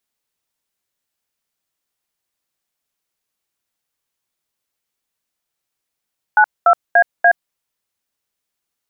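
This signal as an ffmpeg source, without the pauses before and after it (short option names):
-f lavfi -i "aevalsrc='0.335*clip(min(mod(t,0.291),0.072-mod(t,0.291))/0.002,0,1)*(eq(floor(t/0.291),0)*(sin(2*PI*852*mod(t,0.291))+sin(2*PI*1477*mod(t,0.291)))+eq(floor(t/0.291),1)*(sin(2*PI*697*mod(t,0.291))+sin(2*PI*1336*mod(t,0.291)))+eq(floor(t/0.291),2)*(sin(2*PI*697*mod(t,0.291))+sin(2*PI*1633*mod(t,0.291)))+eq(floor(t/0.291),3)*(sin(2*PI*697*mod(t,0.291))+sin(2*PI*1633*mod(t,0.291))))':d=1.164:s=44100"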